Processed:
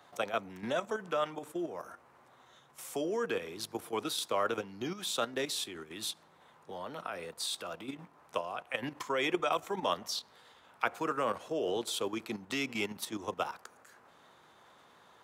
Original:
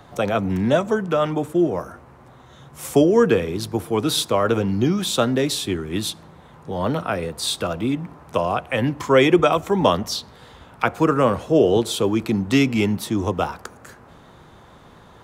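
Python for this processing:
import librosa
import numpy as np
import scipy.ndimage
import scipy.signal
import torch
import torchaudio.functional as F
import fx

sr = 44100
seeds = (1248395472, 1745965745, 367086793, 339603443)

y = fx.level_steps(x, sr, step_db=10)
y = fx.highpass(y, sr, hz=810.0, slope=6)
y = F.gain(torch.from_numpy(y), -5.5).numpy()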